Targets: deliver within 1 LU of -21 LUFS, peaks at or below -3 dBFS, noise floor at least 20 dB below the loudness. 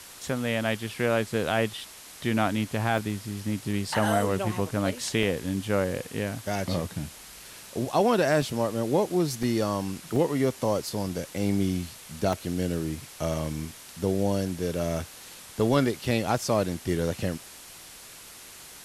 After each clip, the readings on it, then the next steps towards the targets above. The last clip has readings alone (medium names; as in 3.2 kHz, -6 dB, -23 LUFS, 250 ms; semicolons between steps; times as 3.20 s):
dropouts 7; longest dropout 2.1 ms; noise floor -46 dBFS; noise floor target -48 dBFS; loudness -28.0 LUFS; peak level -11.5 dBFS; loudness target -21.0 LUFS
-> interpolate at 2.98/3.73/5.23/8.42/9.43/10.16/12.33 s, 2.1 ms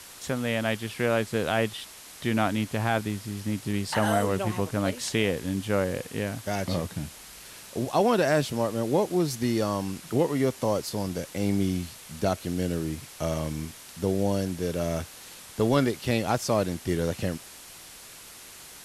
dropouts 0; noise floor -46 dBFS; noise floor target -48 dBFS
-> noise print and reduce 6 dB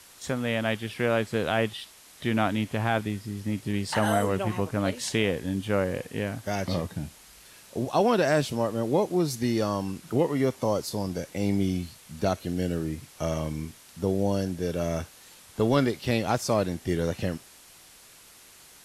noise floor -52 dBFS; loudness -28.0 LUFS; peak level -11.5 dBFS; loudness target -21.0 LUFS
-> trim +7 dB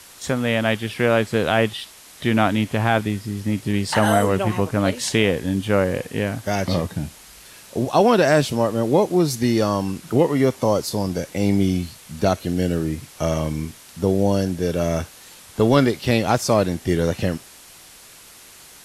loudness -21.0 LUFS; peak level -4.5 dBFS; noise floor -45 dBFS